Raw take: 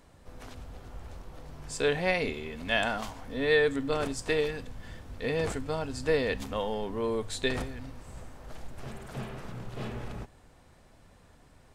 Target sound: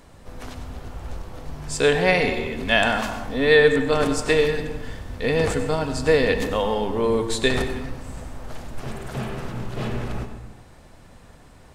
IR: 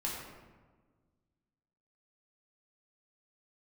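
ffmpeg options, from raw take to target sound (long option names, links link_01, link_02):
-filter_complex "[0:a]asplit=2[link_01][link_02];[1:a]atrim=start_sample=2205,afade=type=out:start_time=0.37:duration=0.01,atrim=end_sample=16758,adelay=94[link_03];[link_02][link_03]afir=irnorm=-1:irlink=0,volume=-11dB[link_04];[link_01][link_04]amix=inputs=2:normalize=0,volume=8.5dB"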